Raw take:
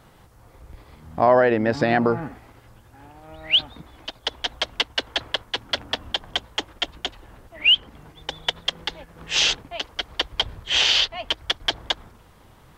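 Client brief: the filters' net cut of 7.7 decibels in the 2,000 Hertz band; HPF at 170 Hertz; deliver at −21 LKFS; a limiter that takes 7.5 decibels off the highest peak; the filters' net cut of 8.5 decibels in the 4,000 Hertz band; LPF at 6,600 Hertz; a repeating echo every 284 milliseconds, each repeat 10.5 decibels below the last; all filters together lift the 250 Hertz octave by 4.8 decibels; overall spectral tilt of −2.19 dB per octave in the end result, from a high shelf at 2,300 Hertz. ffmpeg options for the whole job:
ffmpeg -i in.wav -af "highpass=170,lowpass=6600,equalizer=frequency=250:width_type=o:gain=7,equalizer=frequency=2000:width_type=o:gain=-5.5,highshelf=frequency=2300:gain=-6,equalizer=frequency=4000:width_type=o:gain=-3.5,alimiter=limit=-12dB:level=0:latency=1,aecho=1:1:284|568|852:0.299|0.0896|0.0269,volume=7.5dB" out.wav

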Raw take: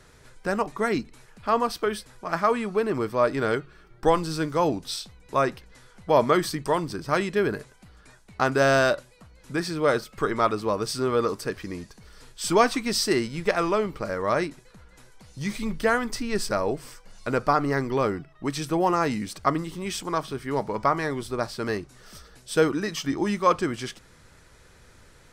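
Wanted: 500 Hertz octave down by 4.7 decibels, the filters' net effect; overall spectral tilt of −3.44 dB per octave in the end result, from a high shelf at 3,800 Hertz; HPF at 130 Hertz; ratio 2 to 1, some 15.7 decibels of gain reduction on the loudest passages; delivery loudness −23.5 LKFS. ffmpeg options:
ffmpeg -i in.wav -af "highpass=130,equalizer=frequency=500:width_type=o:gain=-6,highshelf=frequency=3800:gain=6,acompressor=threshold=-47dB:ratio=2,volume=17dB" out.wav

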